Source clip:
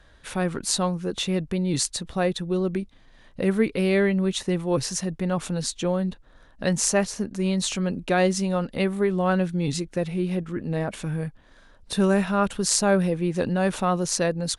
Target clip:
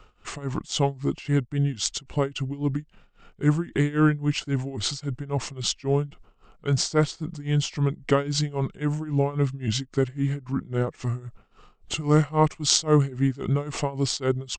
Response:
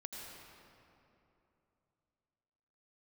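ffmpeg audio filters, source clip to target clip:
-af "tremolo=f=3.7:d=0.9,asetrate=34006,aresample=44100,atempo=1.29684,volume=1.5"

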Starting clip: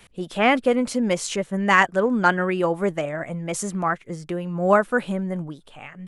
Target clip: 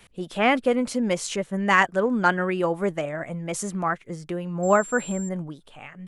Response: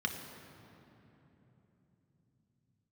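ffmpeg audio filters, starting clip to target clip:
-filter_complex "[0:a]asettb=1/sr,asplit=3[s0][s1][s2];[s0]atrim=end=4.634[s3];[s1]atrim=start=4.63:end=5.29,asetpts=PTS-STARTPTS,afade=t=in:d=0.004:c=qsin,afade=t=out:st=0.656:d=0.004:c=qsin,aeval=exprs='val(0)+0.0178*sin(2*PI*7400*n/s)':c=same[s4];[s2]atrim=start=5.286[s5];[s3][s4]acrossfade=d=0.004:c1=hsin:c2=qsin[s6];[s6][s5]acrossfade=d=0.004:c1=qsin:c2=hsin,volume=0.794"

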